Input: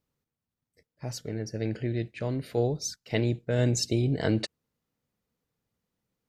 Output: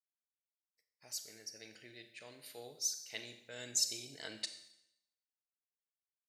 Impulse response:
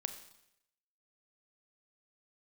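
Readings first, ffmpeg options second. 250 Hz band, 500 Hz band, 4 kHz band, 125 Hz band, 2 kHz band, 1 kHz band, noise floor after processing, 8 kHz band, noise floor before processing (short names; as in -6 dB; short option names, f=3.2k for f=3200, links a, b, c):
-27.5 dB, -23.0 dB, -3.5 dB, -34.5 dB, -11.0 dB, -18.0 dB, under -85 dBFS, -0.5 dB, under -85 dBFS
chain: -filter_complex "[0:a]agate=range=-33dB:threshold=-57dB:ratio=3:detection=peak,aderivative[a];[1:a]atrim=start_sample=2205[b];[a][b]afir=irnorm=-1:irlink=0,volume=1dB"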